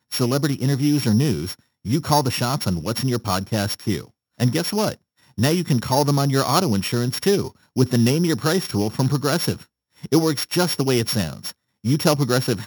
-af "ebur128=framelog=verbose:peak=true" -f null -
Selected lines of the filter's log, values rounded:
Integrated loudness:
  I:         -21.0 LUFS
  Threshold: -31.3 LUFS
Loudness range:
  LRA:         3.0 LU
  Threshold: -41.4 LUFS
  LRA low:   -23.0 LUFS
  LRA high:  -20.0 LUFS
True peak:
  Peak:       -3.1 dBFS